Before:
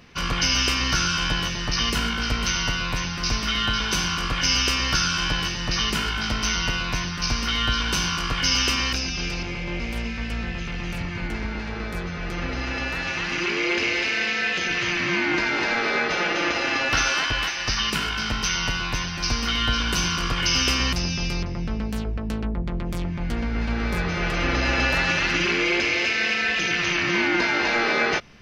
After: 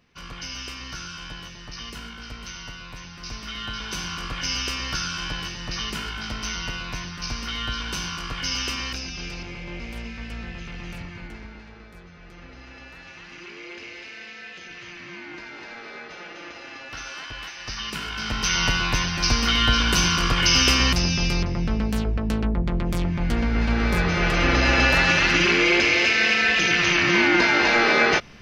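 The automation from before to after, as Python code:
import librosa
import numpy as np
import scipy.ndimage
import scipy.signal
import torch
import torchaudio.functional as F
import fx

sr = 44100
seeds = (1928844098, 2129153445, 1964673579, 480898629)

y = fx.gain(x, sr, db=fx.line((2.94, -13.5), (4.17, -6.0), (10.93, -6.0), (11.88, -16.0), (16.85, -16.0), (18.07, -5.5), (18.62, 3.5)))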